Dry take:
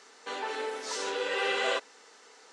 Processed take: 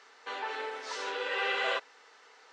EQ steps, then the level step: high-pass 1.4 kHz 6 dB/octave; tape spacing loss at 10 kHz 24 dB; +6.5 dB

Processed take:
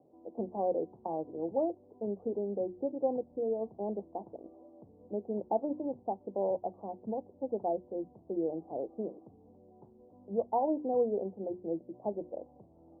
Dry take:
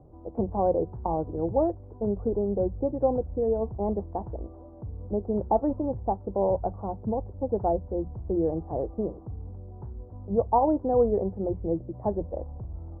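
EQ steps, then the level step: Chebyshev band-pass 230–750 Hz, order 2; hum notches 60/120/180/240/300/360 Hz; -6.0 dB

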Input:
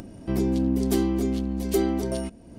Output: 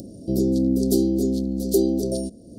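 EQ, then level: high-pass 140 Hz 6 dB/octave; elliptic band-stop 570–4300 Hz, stop band 50 dB; +5.5 dB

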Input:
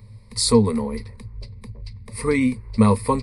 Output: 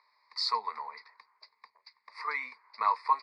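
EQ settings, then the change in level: Chebyshev band-pass 570–4900 Hz, order 4; static phaser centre 1.3 kHz, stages 4; band-stop 2.7 kHz, Q 20; 0.0 dB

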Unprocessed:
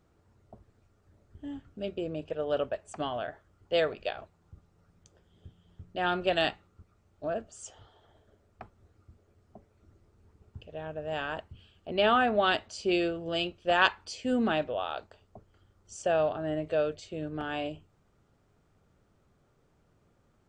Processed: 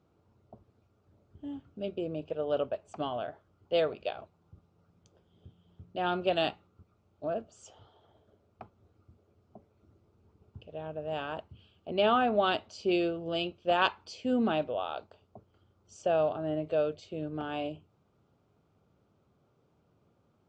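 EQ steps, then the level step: high-pass 90 Hz; distance through air 110 m; peaking EQ 1.8 kHz -10 dB 0.46 oct; 0.0 dB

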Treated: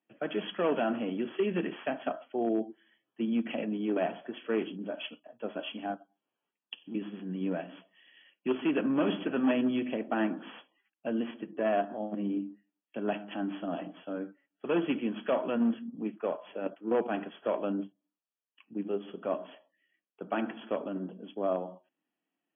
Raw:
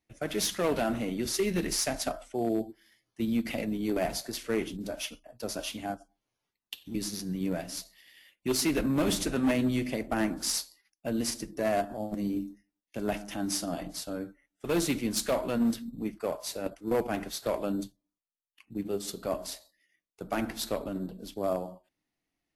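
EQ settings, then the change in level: high-pass 190 Hz 24 dB/octave; brick-wall FIR low-pass 3.4 kHz; band-stop 2.1 kHz, Q 5.7; 0.0 dB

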